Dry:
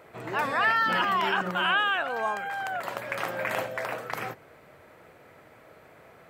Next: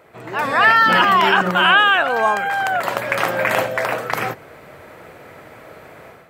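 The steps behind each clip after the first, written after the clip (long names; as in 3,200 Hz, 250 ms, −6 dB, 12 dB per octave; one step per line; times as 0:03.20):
automatic gain control gain up to 10.5 dB
level +2 dB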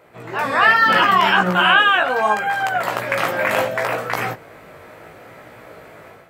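chorus effect 0.72 Hz, delay 16.5 ms, depth 3.1 ms
level +2.5 dB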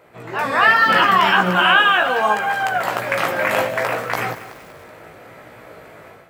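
feedback echo at a low word length 189 ms, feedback 55%, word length 6 bits, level −13 dB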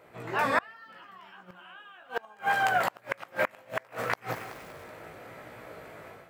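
gate with flip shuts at −8 dBFS, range −31 dB
level −5 dB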